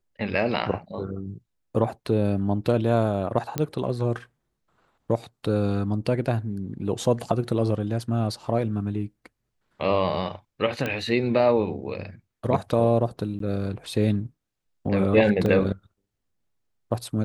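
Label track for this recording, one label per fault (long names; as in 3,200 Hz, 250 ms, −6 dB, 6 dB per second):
3.580000	3.580000	click −11 dBFS
10.860000	10.860000	click −14 dBFS
13.390000	13.400000	drop-out
15.460000	15.460000	drop-out 2.4 ms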